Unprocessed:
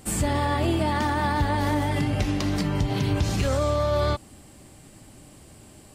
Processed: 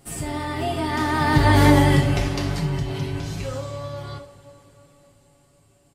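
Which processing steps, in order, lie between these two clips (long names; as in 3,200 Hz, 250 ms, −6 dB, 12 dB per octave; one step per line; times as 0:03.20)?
source passing by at 0:01.62, 11 m/s, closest 3 metres
comb filter 7.2 ms, depth 51%
on a send: convolution reverb, pre-delay 3 ms, DRR 2 dB
on the sum: level +8 dB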